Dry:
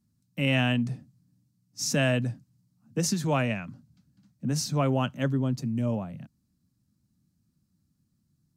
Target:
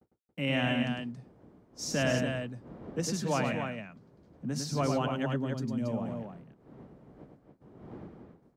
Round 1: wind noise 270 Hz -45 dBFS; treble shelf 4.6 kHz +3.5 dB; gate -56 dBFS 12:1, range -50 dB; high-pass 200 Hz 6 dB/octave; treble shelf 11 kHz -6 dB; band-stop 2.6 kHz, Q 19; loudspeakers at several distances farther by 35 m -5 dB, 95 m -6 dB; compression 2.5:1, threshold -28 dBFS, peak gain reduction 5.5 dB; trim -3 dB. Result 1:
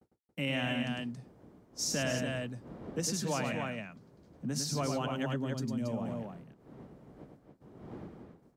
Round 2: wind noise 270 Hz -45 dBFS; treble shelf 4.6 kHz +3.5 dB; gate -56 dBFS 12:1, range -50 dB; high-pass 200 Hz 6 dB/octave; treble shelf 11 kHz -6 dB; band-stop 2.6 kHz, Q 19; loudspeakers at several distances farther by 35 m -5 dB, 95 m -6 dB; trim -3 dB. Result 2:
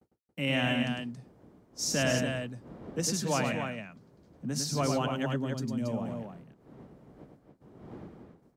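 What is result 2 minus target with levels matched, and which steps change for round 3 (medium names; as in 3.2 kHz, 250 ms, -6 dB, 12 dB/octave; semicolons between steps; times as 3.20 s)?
8 kHz band +5.0 dB
change: first treble shelf 4.6 kHz -5 dB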